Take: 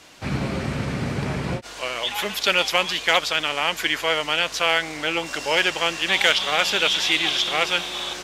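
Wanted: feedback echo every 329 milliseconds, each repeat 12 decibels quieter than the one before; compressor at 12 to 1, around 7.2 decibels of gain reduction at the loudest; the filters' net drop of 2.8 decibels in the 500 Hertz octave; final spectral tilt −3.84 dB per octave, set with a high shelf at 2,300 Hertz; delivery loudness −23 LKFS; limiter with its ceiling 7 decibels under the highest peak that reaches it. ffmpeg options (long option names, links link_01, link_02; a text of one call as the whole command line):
ffmpeg -i in.wav -af "equalizer=frequency=500:width_type=o:gain=-3,highshelf=frequency=2300:gain=-7,acompressor=threshold=-24dB:ratio=12,alimiter=limit=-19dB:level=0:latency=1,aecho=1:1:329|658|987:0.251|0.0628|0.0157,volume=7dB" out.wav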